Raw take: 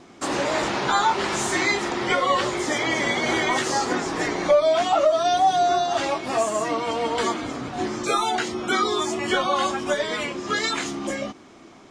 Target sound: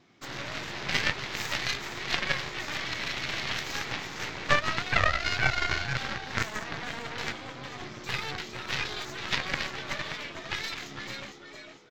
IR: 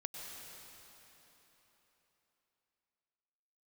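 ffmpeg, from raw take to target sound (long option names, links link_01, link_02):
-filter_complex "[0:a]asplit=2[link_01][link_02];[link_02]asplit=5[link_03][link_04][link_05][link_06][link_07];[link_03]adelay=456,afreqshift=71,volume=-6dB[link_08];[link_04]adelay=912,afreqshift=142,volume=-14.4dB[link_09];[link_05]adelay=1368,afreqshift=213,volume=-22.8dB[link_10];[link_06]adelay=1824,afreqshift=284,volume=-31.2dB[link_11];[link_07]adelay=2280,afreqshift=355,volume=-39.6dB[link_12];[link_08][link_09][link_10][link_11][link_12]amix=inputs=5:normalize=0[link_13];[link_01][link_13]amix=inputs=2:normalize=0,aeval=exprs='0.631*(cos(1*acos(clip(val(0)/0.631,-1,1)))-cos(1*PI/2))+0.178*(cos(2*acos(clip(val(0)/0.631,-1,1)))-cos(2*PI/2))+0.251*(cos(3*acos(clip(val(0)/0.631,-1,1)))-cos(3*PI/2))+0.01*(cos(5*acos(clip(val(0)/0.631,-1,1)))-cos(5*PI/2))':channel_layout=same,aexciter=amount=1.1:drive=3.3:freq=5500,equalizer=frequency=125:width_type=o:width=1:gain=10,equalizer=frequency=2000:width_type=o:width=1:gain=7,equalizer=frequency=4000:width_type=o:width=1:gain=8,equalizer=frequency=8000:width_type=o:width=1:gain=-5,volume=1.5dB"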